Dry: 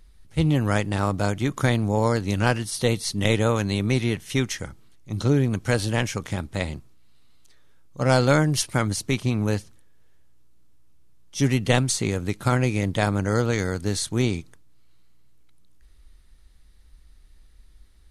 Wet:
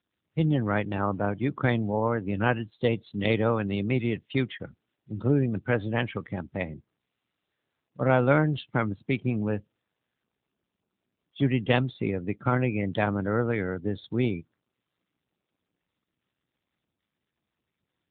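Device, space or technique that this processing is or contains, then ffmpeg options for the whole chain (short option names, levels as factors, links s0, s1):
mobile call with aggressive noise cancelling: -af "highpass=f=120:p=1,afftdn=nr=24:nf=-34,volume=0.841" -ar 8000 -c:a libopencore_amrnb -b:a 10200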